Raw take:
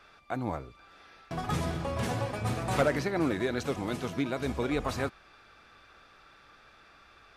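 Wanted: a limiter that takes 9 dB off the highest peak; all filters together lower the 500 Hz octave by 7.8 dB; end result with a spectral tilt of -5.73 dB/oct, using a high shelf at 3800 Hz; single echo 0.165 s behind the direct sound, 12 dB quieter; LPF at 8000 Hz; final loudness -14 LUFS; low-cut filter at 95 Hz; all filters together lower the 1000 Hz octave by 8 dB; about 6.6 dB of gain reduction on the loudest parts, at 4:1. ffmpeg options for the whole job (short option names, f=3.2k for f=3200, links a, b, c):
-af "highpass=95,lowpass=8k,equalizer=f=500:t=o:g=-8,equalizer=f=1k:t=o:g=-7.5,highshelf=f=3.8k:g=-8,acompressor=threshold=-35dB:ratio=4,alimiter=level_in=9dB:limit=-24dB:level=0:latency=1,volume=-9dB,aecho=1:1:165:0.251,volume=29.5dB"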